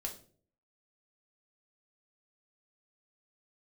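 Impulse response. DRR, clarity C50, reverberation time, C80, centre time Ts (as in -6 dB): 0.5 dB, 10.5 dB, 0.50 s, 15.0 dB, 15 ms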